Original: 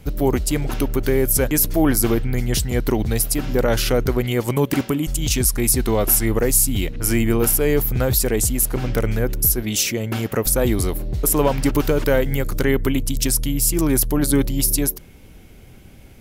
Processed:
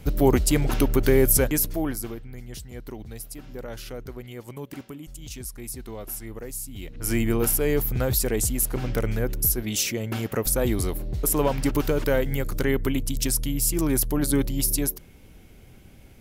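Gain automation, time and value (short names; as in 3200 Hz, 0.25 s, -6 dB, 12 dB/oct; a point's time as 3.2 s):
1.29 s 0 dB
1.83 s -10 dB
2.19 s -18 dB
6.72 s -18 dB
7.14 s -5 dB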